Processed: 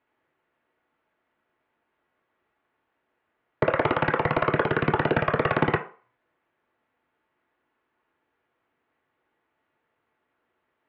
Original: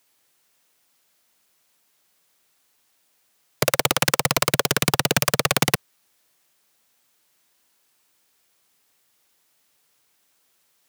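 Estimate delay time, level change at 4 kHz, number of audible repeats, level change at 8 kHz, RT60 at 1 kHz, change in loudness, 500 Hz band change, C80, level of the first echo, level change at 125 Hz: none, -16.5 dB, none, under -40 dB, 0.40 s, -4.0 dB, +1.5 dB, 17.0 dB, none, -1.0 dB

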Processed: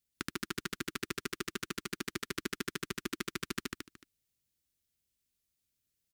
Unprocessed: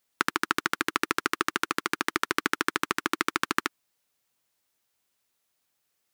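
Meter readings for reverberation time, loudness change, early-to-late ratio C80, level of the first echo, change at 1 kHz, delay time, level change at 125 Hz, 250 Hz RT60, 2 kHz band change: none, -11.0 dB, none, -3.5 dB, -17.0 dB, 0.145 s, +0.5 dB, none, -13.0 dB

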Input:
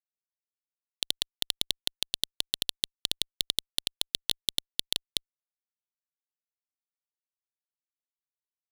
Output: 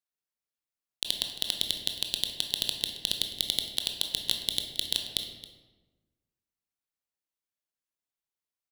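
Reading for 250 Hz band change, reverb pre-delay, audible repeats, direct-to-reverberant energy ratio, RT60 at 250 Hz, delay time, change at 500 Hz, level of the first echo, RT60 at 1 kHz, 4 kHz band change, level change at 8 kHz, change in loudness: +2.5 dB, 18 ms, 1, 3.5 dB, 1.5 s, 0.271 s, +2.0 dB, -17.5 dB, 1.2 s, +1.5 dB, +1.0 dB, +1.0 dB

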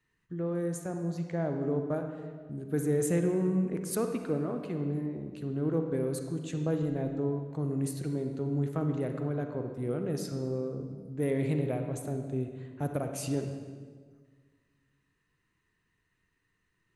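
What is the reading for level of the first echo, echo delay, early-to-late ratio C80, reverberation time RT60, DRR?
none, none, 7.0 dB, 1.6 s, 5.0 dB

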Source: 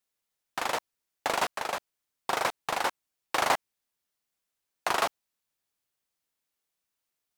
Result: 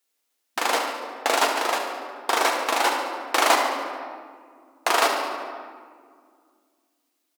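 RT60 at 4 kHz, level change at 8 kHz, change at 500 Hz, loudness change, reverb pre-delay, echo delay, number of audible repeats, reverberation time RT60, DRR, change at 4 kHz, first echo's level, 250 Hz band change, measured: 1.1 s, +9.0 dB, +8.5 dB, +7.5 dB, 4 ms, 72 ms, 1, 2.0 s, 1.0 dB, +9.0 dB, -10.0 dB, +9.5 dB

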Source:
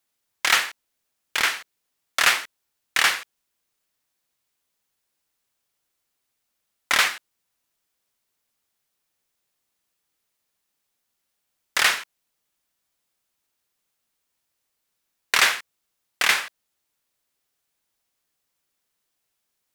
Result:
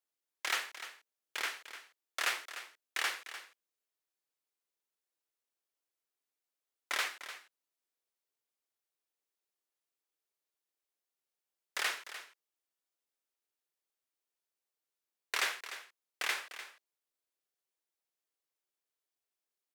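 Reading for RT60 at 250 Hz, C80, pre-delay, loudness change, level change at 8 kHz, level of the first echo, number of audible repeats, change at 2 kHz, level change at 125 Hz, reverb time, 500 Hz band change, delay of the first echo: none, none, none, -16.0 dB, -15.0 dB, -12.5 dB, 1, -14.5 dB, n/a, none, -12.0 dB, 0.299 s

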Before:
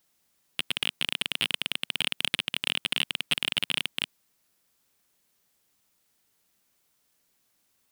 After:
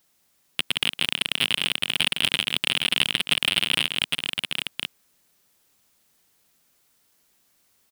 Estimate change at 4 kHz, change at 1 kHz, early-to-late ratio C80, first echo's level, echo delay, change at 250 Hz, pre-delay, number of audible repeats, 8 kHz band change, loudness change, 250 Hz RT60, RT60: +6.0 dB, +6.0 dB, none, -11.5 dB, 0.164 s, +6.0 dB, none, 2, +6.0 dB, +5.5 dB, none, none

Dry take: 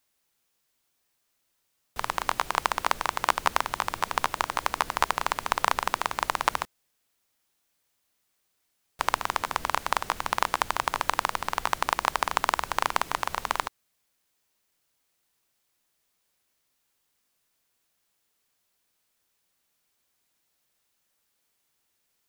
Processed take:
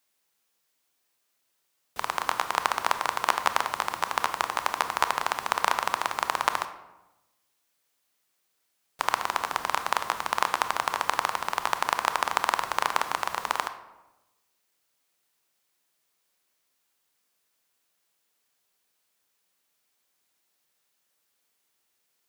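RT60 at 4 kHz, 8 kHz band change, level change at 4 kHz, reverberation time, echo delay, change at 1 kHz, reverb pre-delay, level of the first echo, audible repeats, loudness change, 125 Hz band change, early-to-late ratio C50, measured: 0.60 s, 0.0 dB, +0.5 dB, 1.0 s, none, +0.5 dB, 24 ms, none, none, +0.5 dB, -6.0 dB, 11.5 dB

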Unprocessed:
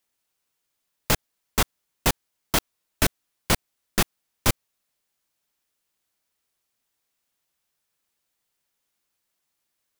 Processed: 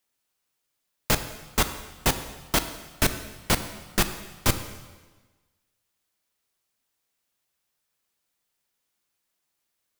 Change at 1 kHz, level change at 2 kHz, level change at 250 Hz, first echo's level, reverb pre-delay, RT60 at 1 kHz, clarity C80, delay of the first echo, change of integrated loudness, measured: -0.5 dB, -0.5 dB, -0.5 dB, none, 5 ms, 1.3 s, 12.0 dB, none, -0.5 dB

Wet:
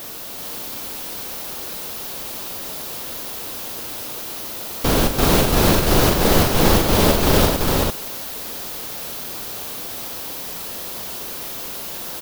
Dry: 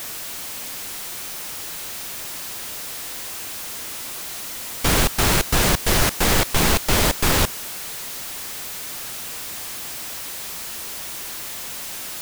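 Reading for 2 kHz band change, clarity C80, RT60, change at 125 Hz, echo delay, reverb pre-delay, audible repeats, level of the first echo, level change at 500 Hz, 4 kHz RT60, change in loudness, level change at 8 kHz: -1.5 dB, none, none, +4.0 dB, 42 ms, none, 5, -9.0 dB, +7.0 dB, none, +2.0 dB, -2.0 dB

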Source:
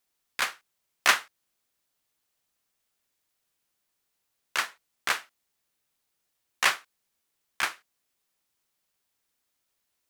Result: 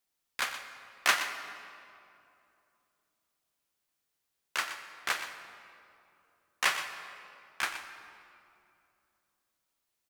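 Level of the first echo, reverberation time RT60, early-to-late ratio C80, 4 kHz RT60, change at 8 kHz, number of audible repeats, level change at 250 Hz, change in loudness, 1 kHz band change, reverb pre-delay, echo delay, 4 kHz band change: -11.5 dB, 2.7 s, 7.5 dB, 1.7 s, -4.0 dB, 1, -3.5 dB, -5.0 dB, -3.5 dB, 8 ms, 0.122 s, -3.5 dB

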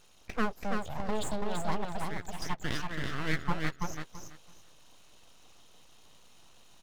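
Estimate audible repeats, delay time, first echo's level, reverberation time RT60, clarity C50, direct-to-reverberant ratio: 3, 0.332 s, -4.0 dB, none, none, none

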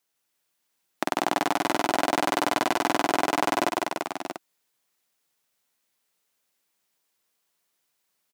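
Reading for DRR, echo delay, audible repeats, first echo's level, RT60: none, 59 ms, 5, -13.5 dB, none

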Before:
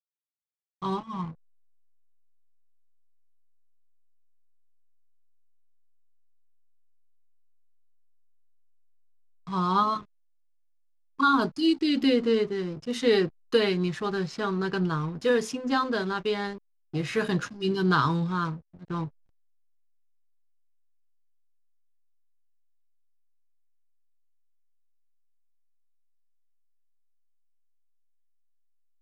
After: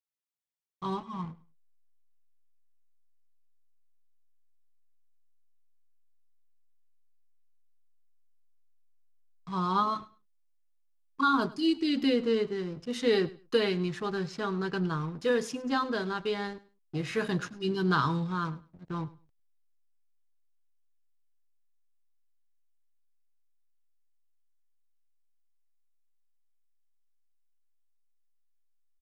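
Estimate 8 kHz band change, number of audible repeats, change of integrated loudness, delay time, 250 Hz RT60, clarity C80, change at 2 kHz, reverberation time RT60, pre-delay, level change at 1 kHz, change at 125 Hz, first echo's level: -3.5 dB, 2, -3.5 dB, 0.103 s, none, none, -3.5 dB, none, none, -3.5 dB, -3.5 dB, -20.0 dB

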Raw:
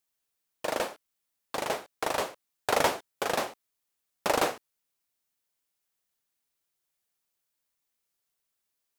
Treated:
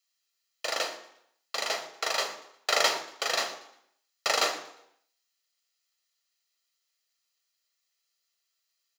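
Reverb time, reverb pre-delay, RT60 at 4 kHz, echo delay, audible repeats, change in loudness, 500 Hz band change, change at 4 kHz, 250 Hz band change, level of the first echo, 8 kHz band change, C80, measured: 0.75 s, 3 ms, 0.70 s, 0.118 s, 2, +2.0 dB, -3.5 dB, +8.0 dB, -10.5 dB, -19.0 dB, +4.5 dB, 13.5 dB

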